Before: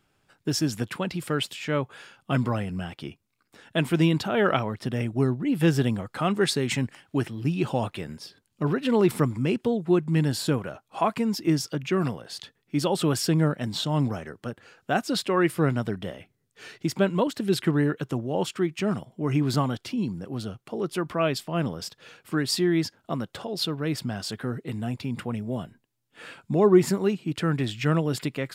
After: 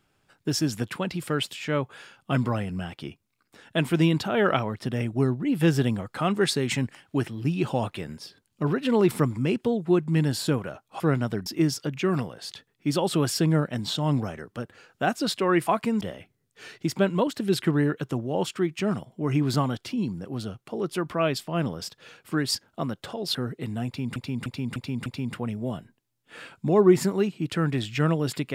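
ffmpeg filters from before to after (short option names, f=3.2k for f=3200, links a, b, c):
-filter_complex "[0:a]asplit=11[a][b][c][d][e][f][g][h][i][j][k];[a]atrim=end=11.002[l];[b]atrim=start=15.548:end=16.012[m];[c]atrim=start=11.338:end=15.552[n];[d]atrim=start=10.998:end=11.342[o];[e]atrim=start=16.008:end=22.552[p];[f]atrim=start=22.858:end=23.662[q];[g]atrim=start=24.408:end=25.222[r];[h]atrim=start=24.918:end=25.222[s];[i]atrim=start=24.918:end=25.222[t];[j]atrim=start=24.918:end=25.222[u];[k]atrim=start=24.918[v];[l][m]acrossfade=d=0.004:c1=hsin:c2=hsin[w];[w][n]acrossfade=d=0.004:c1=hsin:c2=hsin[x];[x][o]acrossfade=d=0.004:c1=hsin:c2=hsin[y];[y][p]acrossfade=d=0.004:c1=hsin:c2=hsin[z];[z][q]acrossfade=d=0.004:c1=hsin:c2=hsin[aa];[aa][r]acrossfade=d=0.004:c1=hsin:c2=hsin[ab];[ab][s]acrossfade=d=0.004:c1=hsin:c2=hsin[ac];[ac][t]acrossfade=d=0.004:c1=hsin:c2=hsin[ad];[ad][u]acrossfade=d=0.004:c1=hsin:c2=hsin[ae];[ae][v]acrossfade=d=0.004:c1=hsin:c2=hsin"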